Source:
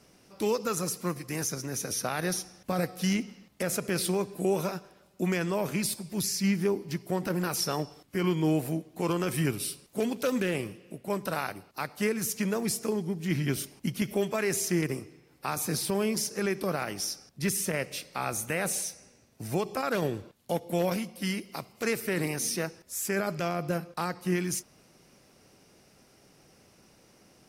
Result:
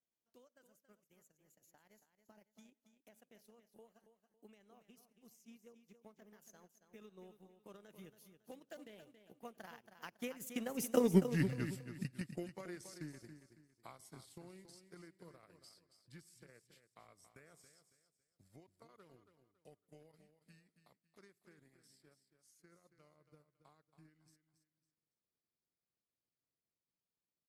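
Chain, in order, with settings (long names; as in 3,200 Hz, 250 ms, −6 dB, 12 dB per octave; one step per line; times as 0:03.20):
source passing by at 0:11.15, 51 m/s, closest 4.7 metres
transient designer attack +8 dB, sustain −10 dB
repeating echo 277 ms, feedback 31%, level −10 dB
level +1 dB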